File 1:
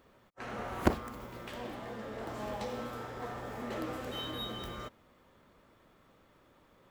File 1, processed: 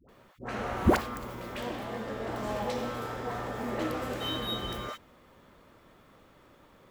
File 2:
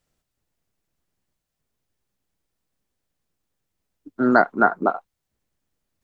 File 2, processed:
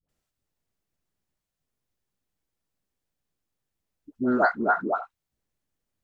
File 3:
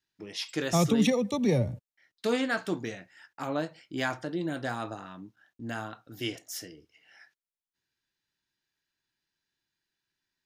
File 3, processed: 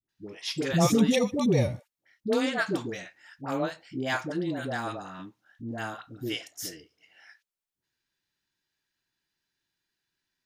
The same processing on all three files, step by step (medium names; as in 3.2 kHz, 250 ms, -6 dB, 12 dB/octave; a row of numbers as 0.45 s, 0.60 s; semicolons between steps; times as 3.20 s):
phase dispersion highs, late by 90 ms, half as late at 620 Hz; peak normalisation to -9 dBFS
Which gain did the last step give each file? +5.5 dB, -5.0 dB, +2.0 dB